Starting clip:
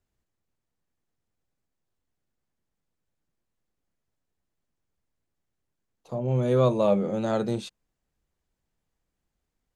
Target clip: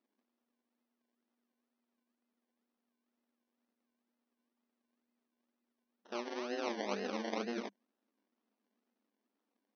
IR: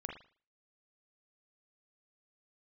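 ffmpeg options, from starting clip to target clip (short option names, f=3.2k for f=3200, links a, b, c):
-af "tremolo=f=240:d=1,areverse,acompressor=threshold=-35dB:ratio=10,areverse,acrusher=samples=27:mix=1:aa=0.000001:lfo=1:lforange=16.2:lforate=2.1,afftfilt=real='re*between(b*sr/4096,200,6300)':imag='im*between(b*sr/4096,200,6300)':win_size=4096:overlap=0.75,volume=2.5dB"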